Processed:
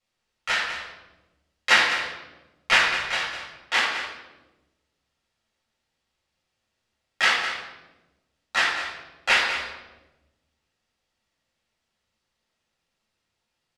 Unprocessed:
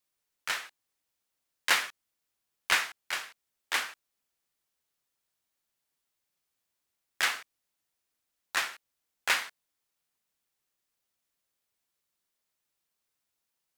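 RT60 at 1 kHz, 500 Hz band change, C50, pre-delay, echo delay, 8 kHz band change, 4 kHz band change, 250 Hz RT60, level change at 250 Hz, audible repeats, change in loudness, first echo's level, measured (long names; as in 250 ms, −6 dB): 0.95 s, +11.5 dB, 3.0 dB, 4 ms, 204 ms, +1.5 dB, +8.5 dB, 1.7 s, +12.0 dB, 1, +8.0 dB, −9.0 dB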